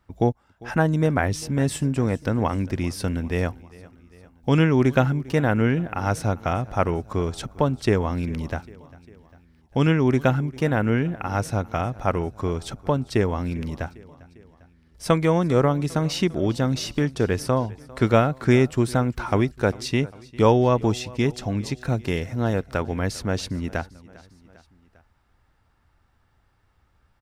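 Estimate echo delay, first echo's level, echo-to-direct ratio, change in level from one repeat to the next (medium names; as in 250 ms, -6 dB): 400 ms, -21.5 dB, -20.0 dB, -4.5 dB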